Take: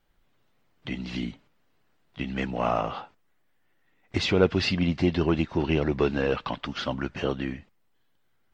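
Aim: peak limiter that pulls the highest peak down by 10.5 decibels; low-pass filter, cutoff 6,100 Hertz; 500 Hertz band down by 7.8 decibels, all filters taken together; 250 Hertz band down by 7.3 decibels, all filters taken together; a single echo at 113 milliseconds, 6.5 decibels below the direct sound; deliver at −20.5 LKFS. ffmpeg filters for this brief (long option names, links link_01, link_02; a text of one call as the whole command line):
ffmpeg -i in.wav -af "lowpass=6100,equalizer=frequency=250:width_type=o:gain=-8.5,equalizer=frequency=500:width_type=o:gain=-7,alimiter=level_in=0.5dB:limit=-24dB:level=0:latency=1,volume=-0.5dB,aecho=1:1:113:0.473,volume=14.5dB" out.wav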